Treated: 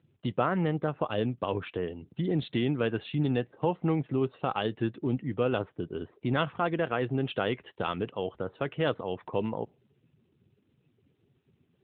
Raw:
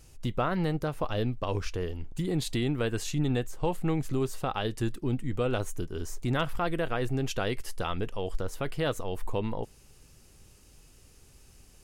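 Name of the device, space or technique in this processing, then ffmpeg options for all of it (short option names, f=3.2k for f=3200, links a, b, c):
mobile call with aggressive noise cancelling: -filter_complex "[0:a]asplit=3[a][b][c];[a]afade=t=out:st=2.63:d=0.02[d];[b]highshelf=f=8.4k:g=-4,afade=t=in:st=2.63:d=0.02,afade=t=out:st=3.44:d=0.02[e];[c]afade=t=in:st=3.44:d=0.02[f];[d][e][f]amix=inputs=3:normalize=0,highpass=130,afftdn=nr=17:nf=-54,volume=2dB" -ar 8000 -c:a libopencore_amrnb -b:a 12200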